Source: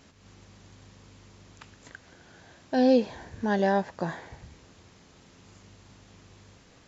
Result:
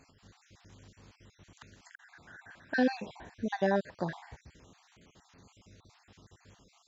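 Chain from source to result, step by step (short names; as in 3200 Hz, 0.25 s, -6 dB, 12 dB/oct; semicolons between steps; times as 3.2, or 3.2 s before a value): random spectral dropouts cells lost 42%; 1.94–3 fifteen-band EQ 400 Hz -4 dB, 1600 Hz +11 dB, 6300 Hz -4 dB; gain -3 dB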